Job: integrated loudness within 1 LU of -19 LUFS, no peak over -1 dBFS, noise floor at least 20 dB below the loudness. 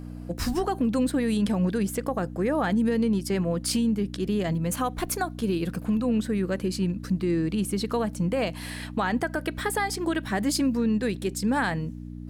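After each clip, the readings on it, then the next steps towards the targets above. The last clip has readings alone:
hum 60 Hz; harmonics up to 300 Hz; hum level -35 dBFS; loudness -27.0 LUFS; peak -14.0 dBFS; loudness target -19.0 LUFS
-> de-hum 60 Hz, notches 5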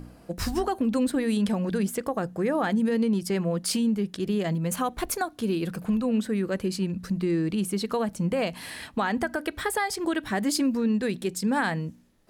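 hum none; loudness -27.0 LUFS; peak -14.5 dBFS; loudness target -19.0 LUFS
-> gain +8 dB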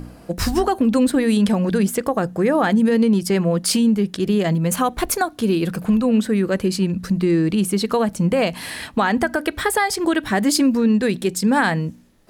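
loudness -19.0 LUFS; peak -6.5 dBFS; noise floor -44 dBFS

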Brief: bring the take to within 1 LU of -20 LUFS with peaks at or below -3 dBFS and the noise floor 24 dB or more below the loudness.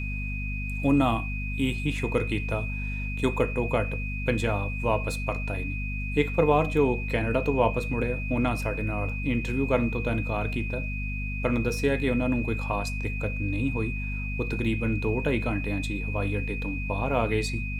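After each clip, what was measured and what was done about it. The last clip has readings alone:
hum 50 Hz; harmonics up to 250 Hz; hum level -29 dBFS; steady tone 2500 Hz; tone level -35 dBFS; loudness -27.5 LUFS; peak -8.0 dBFS; loudness target -20.0 LUFS
-> de-hum 50 Hz, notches 5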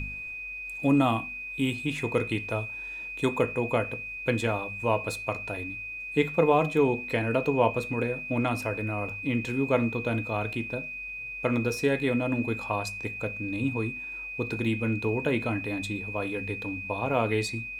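hum none; steady tone 2500 Hz; tone level -35 dBFS
-> notch 2500 Hz, Q 30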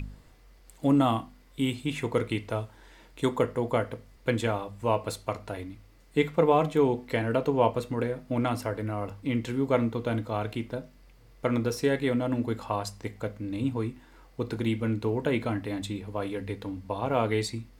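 steady tone none; loudness -29.0 LUFS; peak -8.0 dBFS; loudness target -20.0 LUFS
-> gain +9 dB; limiter -3 dBFS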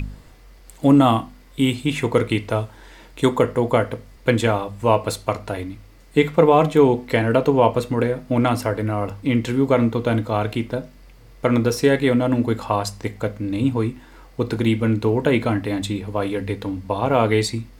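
loudness -20.5 LUFS; peak -3.0 dBFS; noise floor -47 dBFS

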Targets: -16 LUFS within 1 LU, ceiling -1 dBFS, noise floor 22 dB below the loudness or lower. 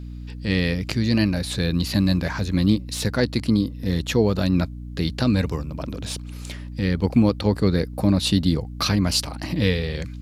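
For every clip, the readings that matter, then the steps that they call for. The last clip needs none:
hum 60 Hz; harmonics up to 300 Hz; hum level -33 dBFS; loudness -22.5 LUFS; peak -5.5 dBFS; loudness target -16.0 LUFS
-> notches 60/120/180/240/300 Hz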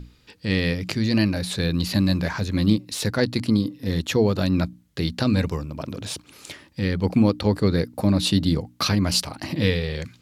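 hum none; loudness -23.0 LUFS; peak -5.5 dBFS; loudness target -16.0 LUFS
-> gain +7 dB; limiter -1 dBFS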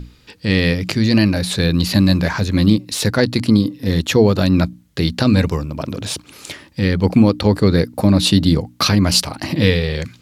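loudness -16.5 LUFS; peak -1.0 dBFS; noise floor -50 dBFS

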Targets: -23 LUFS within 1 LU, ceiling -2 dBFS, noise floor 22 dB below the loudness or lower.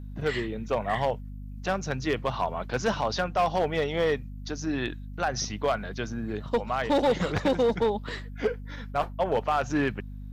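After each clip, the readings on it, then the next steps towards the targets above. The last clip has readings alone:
clipped 1.2%; flat tops at -18.0 dBFS; hum 50 Hz; harmonics up to 250 Hz; hum level -37 dBFS; loudness -28.5 LUFS; peak -18.0 dBFS; loudness target -23.0 LUFS
-> clip repair -18 dBFS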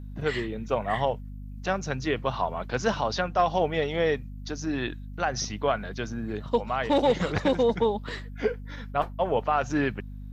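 clipped 0.0%; hum 50 Hz; harmonics up to 250 Hz; hum level -36 dBFS
-> de-hum 50 Hz, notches 5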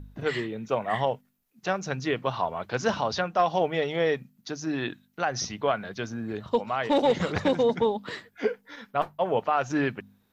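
hum none; loudness -28.0 LUFS; peak -10.5 dBFS; loudness target -23.0 LUFS
-> gain +5 dB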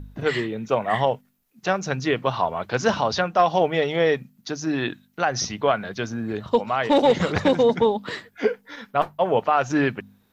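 loudness -23.0 LUFS; peak -5.5 dBFS; noise floor -64 dBFS

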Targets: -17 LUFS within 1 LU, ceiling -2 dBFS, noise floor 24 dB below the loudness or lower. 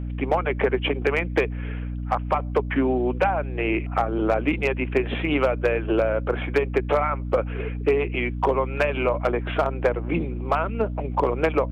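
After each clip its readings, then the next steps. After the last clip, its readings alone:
clipped 0.4%; flat tops at -12.0 dBFS; hum 60 Hz; harmonics up to 300 Hz; hum level -27 dBFS; loudness -24.0 LUFS; peak -12.0 dBFS; loudness target -17.0 LUFS
-> clip repair -12 dBFS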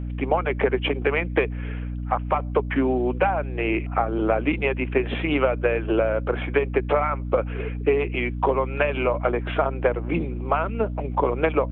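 clipped 0.0%; hum 60 Hz; harmonics up to 300 Hz; hum level -27 dBFS
-> de-hum 60 Hz, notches 5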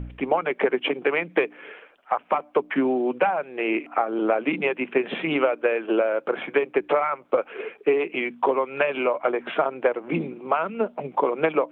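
hum none; loudness -24.5 LUFS; peak -8.5 dBFS; loudness target -17.0 LUFS
-> gain +7.5 dB; limiter -2 dBFS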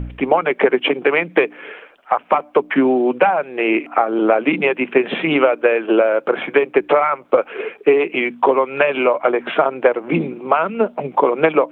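loudness -17.0 LUFS; peak -2.0 dBFS; noise floor -46 dBFS

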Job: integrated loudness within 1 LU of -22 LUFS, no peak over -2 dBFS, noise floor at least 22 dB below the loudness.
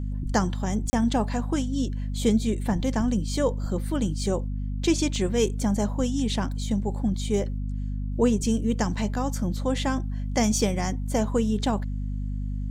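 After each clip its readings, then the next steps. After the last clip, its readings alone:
dropouts 1; longest dropout 30 ms; hum 50 Hz; harmonics up to 250 Hz; hum level -27 dBFS; loudness -26.5 LUFS; peak -8.5 dBFS; loudness target -22.0 LUFS
-> interpolate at 0.9, 30 ms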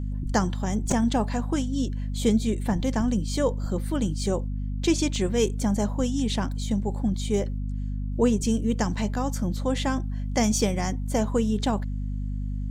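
dropouts 0; hum 50 Hz; harmonics up to 250 Hz; hum level -27 dBFS
-> notches 50/100/150/200/250 Hz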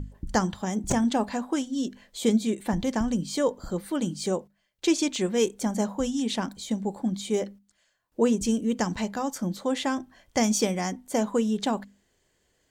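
hum none; loudness -27.5 LUFS; peak -10.0 dBFS; loudness target -22.0 LUFS
-> gain +5.5 dB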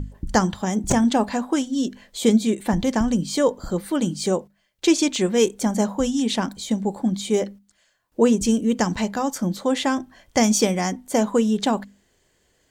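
loudness -22.0 LUFS; peak -4.5 dBFS; noise floor -66 dBFS

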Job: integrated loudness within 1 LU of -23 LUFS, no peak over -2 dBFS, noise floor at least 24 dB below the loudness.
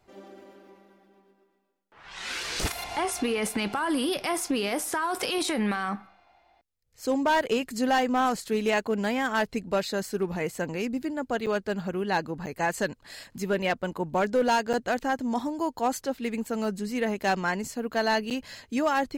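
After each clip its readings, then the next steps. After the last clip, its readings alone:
clipped 0.5%; flat tops at -17.5 dBFS; dropouts 4; longest dropout 7.3 ms; loudness -28.0 LUFS; peak -17.5 dBFS; loudness target -23.0 LUFS
-> clip repair -17.5 dBFS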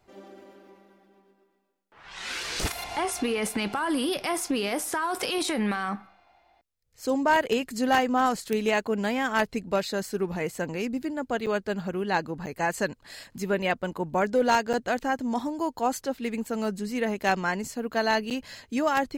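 clipped 0.0%; dropouts 4; longest dropout 7.3 ms
-> interpolate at 11.46/12.46/14.73/18.3, 7.3 ms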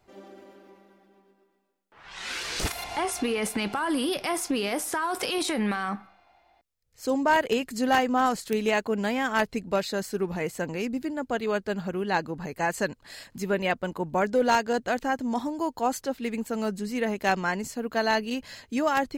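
dropouts 0; loudness -27.5 LUFS; peak -8.5 dBFS; loudness target -23.0 LUFS
-> gain +4.5 dB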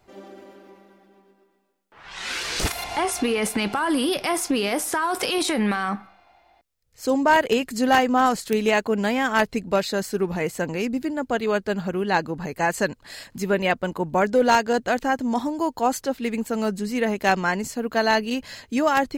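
loudness -23.0 LUFS; peak -4.0 dBFS; noise floor -61 dBFS

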